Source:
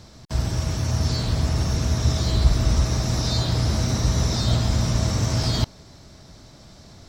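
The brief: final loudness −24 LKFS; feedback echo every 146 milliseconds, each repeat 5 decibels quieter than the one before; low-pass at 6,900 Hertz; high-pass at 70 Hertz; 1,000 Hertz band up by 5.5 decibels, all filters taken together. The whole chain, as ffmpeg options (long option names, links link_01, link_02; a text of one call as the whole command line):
ffmpeg -i in.wav -af "highpass=70,lowpass=6900,equalizer=frequency=1000:width_type=o:gain=7,aecho=1:1:146|292|438|584|730|876|1022:0.562|0.315|0.176|0.0988|0.0553|0.031|0.0173,volume=-1.5dB" out.wav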